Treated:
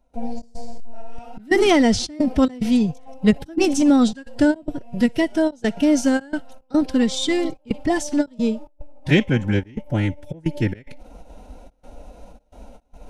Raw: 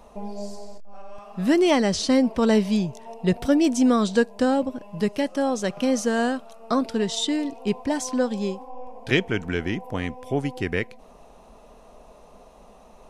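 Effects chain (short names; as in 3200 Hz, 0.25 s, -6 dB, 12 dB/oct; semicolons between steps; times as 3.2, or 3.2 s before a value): Butterworth band-stop 1000 Hz, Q 5; thin delay 61 ms, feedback 33%, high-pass 1800 Hz, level -19.5 dB; in parallel at -7 dB: soft clip -15 dBFS, distortion -16 dB; on the sum: step gate ".xx.xxxxxx.xxxx" 109 bpm -24 dB; low shelf 190 Hz +10.5 dB; formant-preserving pitch shift +2.5 st; ending taper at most 450 dB/s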